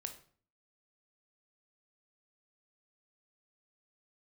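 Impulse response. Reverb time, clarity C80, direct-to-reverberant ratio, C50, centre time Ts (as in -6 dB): 0.50 s, 15.5 dB, 6.0 dB, 11.0 dB, 11 ms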